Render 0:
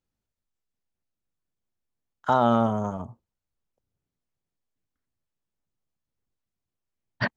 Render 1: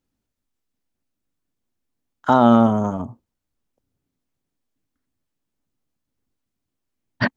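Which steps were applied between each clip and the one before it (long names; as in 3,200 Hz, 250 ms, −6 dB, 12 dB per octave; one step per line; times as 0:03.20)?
parametric band 270 Hz +8.5 dB 0.57 octaves
level +5 dB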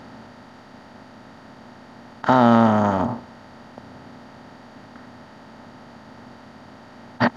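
compressor on every frequency bin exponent 0.4
level −3 dB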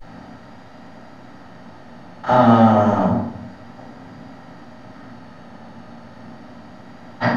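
pitch vibrato 0.31 Hz 38 cents
convolution reverb RT60 0.65 s, pre-delay 4 ms, DRR −11.5 dB
level −12.5 dB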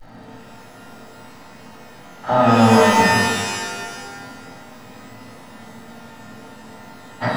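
surface crackle 160 per second −42 dBFS
reverb with rising layers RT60 1.4 s, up +12 semitones, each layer −2 dB, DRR 3.5 dB
level −3.5 dB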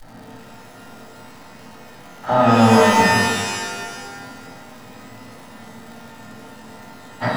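surface crackle 270 per second −38 dBFS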